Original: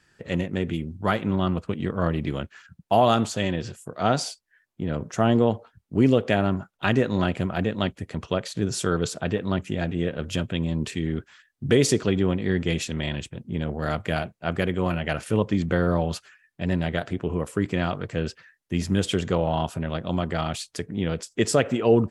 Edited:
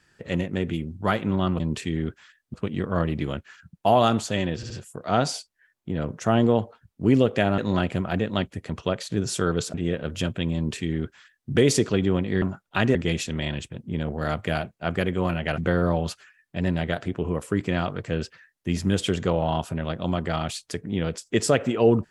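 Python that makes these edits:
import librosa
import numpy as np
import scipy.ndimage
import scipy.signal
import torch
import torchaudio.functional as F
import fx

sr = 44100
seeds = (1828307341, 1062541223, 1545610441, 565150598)

y = fx.edit(x, sr, fx.stutter(start_s=3.62, slice_s=0.07, count=3),
    fx.move(start_s=6.5, length_s=0.53, to_s=12.56),
    fx.cut(start_s=9.19, length_s=0.69),
    fx.duplicate(start_s=10.7, length_s=0.94, to_s=1.6),
    fx.cut(start_s=15.19, length_s=0.44), tone=tone)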